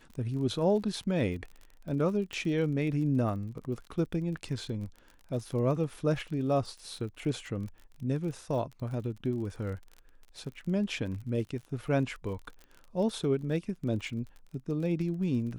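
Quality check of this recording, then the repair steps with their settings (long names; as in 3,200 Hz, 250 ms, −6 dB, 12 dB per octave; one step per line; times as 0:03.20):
surface crackle 38 per second −40 dBFS
0:02.33: click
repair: click removal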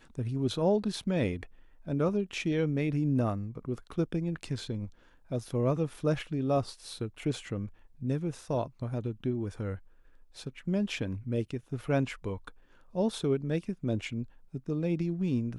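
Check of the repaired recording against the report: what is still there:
0:02.33: click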